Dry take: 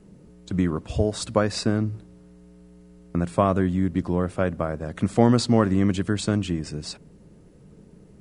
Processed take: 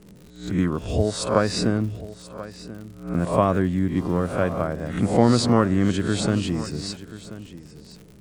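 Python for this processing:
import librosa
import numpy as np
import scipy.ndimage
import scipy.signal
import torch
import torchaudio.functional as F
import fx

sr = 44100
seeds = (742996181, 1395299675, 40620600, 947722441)

y = fx.spec_swells(x, sr, rise_s=0.46)
y = fx.dmg_buzz(y, sr, base_hz=400.0, harmonics=35, level_db=-51.0, tilt_db=-5, odd_only=False, at=(3.95, 4.61), fade=0.02)
y = y + 10.0 ** (-16.0 / 20.0) * np.pad(y, (int(1033 * sr / 1000.0), 0))[:len(y)]
y = fx.dmg_crackle(y, sr, seeds[0], per_s=95.0, level_db=-37.0)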